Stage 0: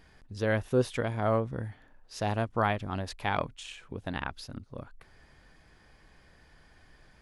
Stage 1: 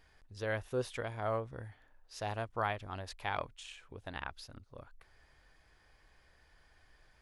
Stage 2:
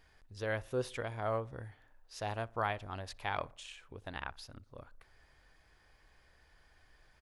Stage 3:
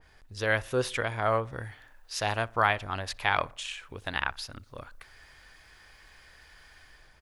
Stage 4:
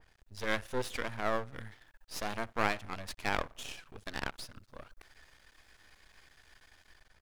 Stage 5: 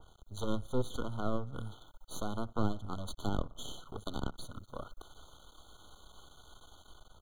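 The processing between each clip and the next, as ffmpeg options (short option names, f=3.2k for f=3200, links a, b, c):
-af "equalizer=f=200:w=0.89:g=-9.5,volume=-5.5dB"
-filter_complex "[0:a]asplit=2[a][b];[b]adelay=61,lowpass=f=1.8k:p=1,volume=-22.5dB,asplit=2[c][d];[d]adelay=61,lowpass=f=1.8k:p=1,volume=0.53,asplit=2[e][f];[f]adelay=61,lowpass=f=1.8k:p=1,volume=0.53,asplit=2[g][h];[h]adelay=61,lowpass=f=1.8k:p=1,volume=0.53[i];[a][c][e][g][i]amix=inputs=5:normalize=0"
-filter_complex "[0:a]acrossover=split=1200[a][b];[b]dynaudnorm=f=110:g=7:m=8dB[c];[a][c]amix=inputs=2:normalize=0,adynamicequalizer=threshold=0.00447:dfrequency=2500:dqfactor=0.7:tfrequency=2500:tqfactor=0.7:attack=5:release=100:ratio=0.375:range=2.5:mode=cutabove:tftype=highshelf,volume=6.5dB"
-af "aeval=exprs='max(val(0),0)':c=same,volume=-2.5dB"
-filter_complex "[0:a]acrossover=split=310[a][b];[b]acompressor=threshold=-45dB:ratio=5[c];[a][c]amix=inputs=2:normalize=0,aeval=exprs='0.0562*(cos(1*acos(clip(val(0)/0.0562,-1,1)))-cos(1*PI/2))+0.00251*(cos(8*acos(clip(val(0)/0.0562,-1,1)))-cos(8*PI/2))':c=same,afftfilt=real='re*eq(mod(floor(b*sr/1024/1500),2),0)':imag='im*eq(mod(floor(b*sr/1024/1500),2),0)':win_size=1024:overlap=0.75,volume=8dB"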